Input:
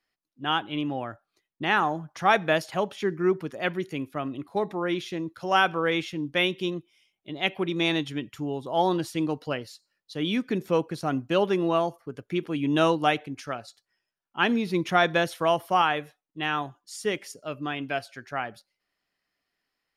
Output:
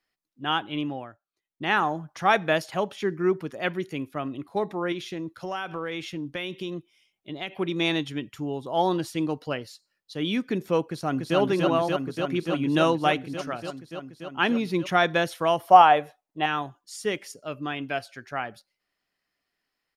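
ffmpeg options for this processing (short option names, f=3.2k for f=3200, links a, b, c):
-filter_complex "[0:a]asettb=1/sr,asplit=3[a][b][c];[a]atrim=end=4.924[d];[b]atrim=start=4.92:end=7.56,asetpts=PTS-STARTPTS,afade=t=in:d=0.004:c=qsin,afade=t=out:st=2.636:d=0.004:c=qsin,acompressor=threshold=-28dB:ratio=6:attack=3.2:release=140:knee=1:detection=peak[e];[c]atrim=start=7.556[f];[d][e]acrossfade=d=0.004:c1=hsin:c2=qsin[g];[g][f]acrossfade=d=0.004:c1=qsin:c2=hsin,asplit=2[h][i];[i]afade=t=in:st=10.88:d=0.01,afade=t=out:st=11.38:d=0.01,aecho=0:1:290|580|870|1160|1450|1740|2030|2320|2610|2900|3190|3480:0.794328|0.675179|0.573902|0.487817|0.414644|0.352448|0.299581|0.254643|0.216447|0.18398|0.156383|0.132925[j];[h][j]amix=inputs=2:normalize=0,asettb=1/sr,asplit=3[k][l][m];[k]atrim=end=15.674[n];[l]atrim=start=15.67:end=16.46,asetpts=PTS-STARTPTS,afade=t=in:d=0.004:c=qsin,afade=t=out:st=0.786:d=0.004:c=qsin,equalizer=f=700:w=1.5:g=12.5[o];[m]atrim=start=16.456[p];[n][o]acrossfade=d=0.004:c1=hsin:c2=qsin[q];[q][p]acrossfade=d=0.004:c1=qsin:c2=hsin,asplit=3[r][s][t];[r]atrim=end=1.18,asetpts=PTS-STARTPTS,afade=t=out:st=0.83:d=0.35:silence=0.177828[u];[s]atrim=start=1.18:end=1.36,asetpts=PTS-STARTPTS,volume=-15dB[v];[t]atrim=start=1.36,asetpts=PTS-STARTPTS,afade=t=in:d=0.35:silence=0.177828[w];[u][v][w]concat=n=3:v=0:a=1"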